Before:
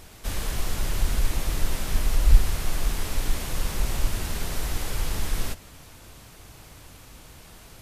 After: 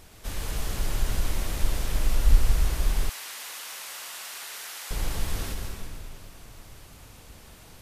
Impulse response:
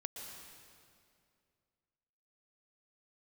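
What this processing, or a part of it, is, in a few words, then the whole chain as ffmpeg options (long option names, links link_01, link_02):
stairwell: -filter_complex "[1:a]atrim=start_sample=2205[link_01];[0:a][link_01]afir=irnorm=-1:irlink=0,asettb=1/sr,asplit=3[link_02][link_03][link_04];[link_02]atrim=end=3.094[link_05];[link_03]atrim=start=3.09:end=4.91,asetpts=PTS-STARTPTS,afade=type=in:duration=0.004:curve=qsin,afade=type=out:start_time=1.816:duration=0.004:curve=qsin,highpass=1100[link_06];[link_04]atrim=start=4.906[link_07];[link_05][link_06]acrossfade=duration=0.004:curve1=hsin:curve2=qsin[link_08];[link_08][link_07]acrossfade=duration=0.004:curve1=qsin:curve2=hsin"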